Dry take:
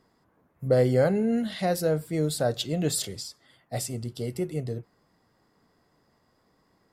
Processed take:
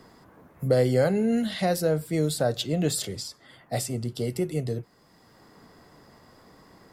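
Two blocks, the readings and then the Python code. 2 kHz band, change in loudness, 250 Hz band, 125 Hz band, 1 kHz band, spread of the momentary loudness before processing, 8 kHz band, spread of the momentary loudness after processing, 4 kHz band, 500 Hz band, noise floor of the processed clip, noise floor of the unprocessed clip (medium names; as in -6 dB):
+1.5 dB, +1.0 dB, +1.5 dB, +1.0 dB, +1.0 dB, 14 LU, 0.0 dB, 11 LU, +1.5 dB, +0.5 dB, -58 dBFS, -68 dBFS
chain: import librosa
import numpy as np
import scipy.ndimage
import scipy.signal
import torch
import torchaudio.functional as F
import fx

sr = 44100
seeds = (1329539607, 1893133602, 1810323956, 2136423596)

y = fx.band_squash(x, sr, depth_pct=40)
y = y * 10.0 ** (1.5 / 20.0)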